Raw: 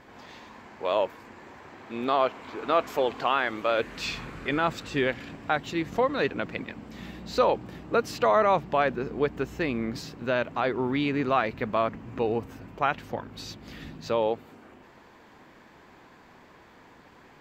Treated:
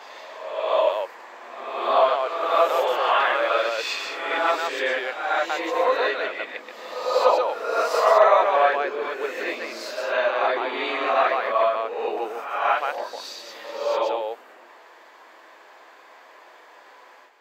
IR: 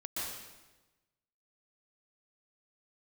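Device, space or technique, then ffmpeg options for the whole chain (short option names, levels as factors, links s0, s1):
ghost voice: -filter_complex "[0:a]areverse[s0];[1:a]atrim=start_sample=2205[s1];[s0][s1]afir=irnorm=-1:irlink=0,areverse,highpass=f=460:w=0.5412,highpass=f=460:w=1.3066,volume=1.5"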